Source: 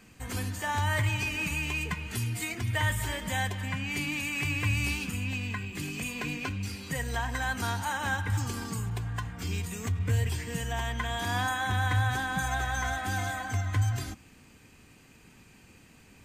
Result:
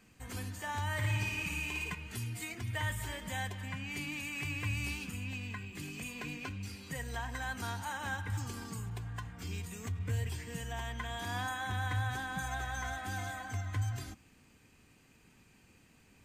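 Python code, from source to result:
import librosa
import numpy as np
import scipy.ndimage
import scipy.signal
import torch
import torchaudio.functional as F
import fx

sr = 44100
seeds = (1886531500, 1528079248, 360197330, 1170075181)

y = fx.room_flutter(x, sr, wall_m=9.6, rt60_s=0.84, at=(0.94, 1.95))
y = y * 10.0 ** (-7.5 / 20.0)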